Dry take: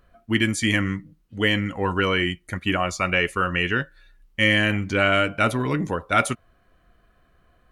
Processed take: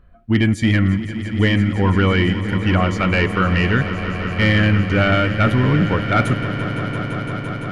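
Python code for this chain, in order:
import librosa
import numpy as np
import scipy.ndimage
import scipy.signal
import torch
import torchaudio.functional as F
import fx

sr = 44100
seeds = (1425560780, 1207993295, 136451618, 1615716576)

p1 = fx.bass_treble(x, sr, bass_db=9, treble_db=-11)
p2 = fx.level_steps(p1, sr, step_db=23)
p3 = p1 + F.gain(torch.from_numpy(p2), -1.5).numpy()
p4 = 10.0 ** (-6.0 / 20.0) * np.tanh(p3 / 10.0 ** (-6.0 / 20.0))
y = fx.echo_swell(p4, sr, ms=170, loudest=5, wet_db=-14.5)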